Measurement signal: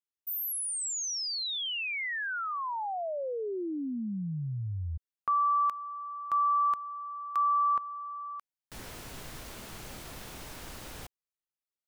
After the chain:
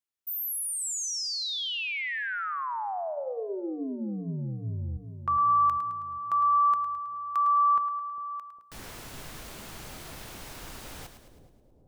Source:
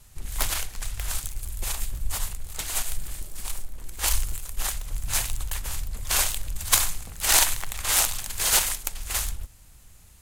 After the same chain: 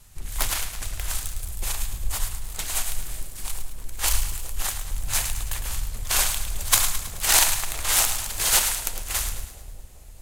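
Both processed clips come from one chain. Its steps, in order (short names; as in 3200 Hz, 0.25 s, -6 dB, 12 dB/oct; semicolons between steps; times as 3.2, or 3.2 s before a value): notches 60/120/180/240/300/360/420/480/540/600 Hz; split-band echo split 630 Hz, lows 0.404 s, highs 0.107 s, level -9.5 dB; gain +1 dB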